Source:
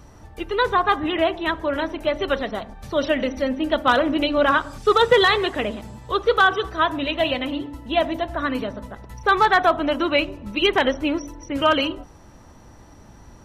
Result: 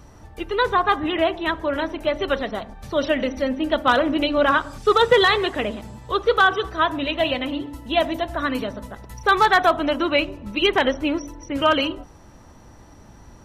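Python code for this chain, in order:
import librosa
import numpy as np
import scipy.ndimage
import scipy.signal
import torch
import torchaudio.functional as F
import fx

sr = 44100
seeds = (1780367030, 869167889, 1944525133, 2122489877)

y = fx.high_shelf(x, sr, hz=4800.0, db=7.5, at=(7.67, 9.91))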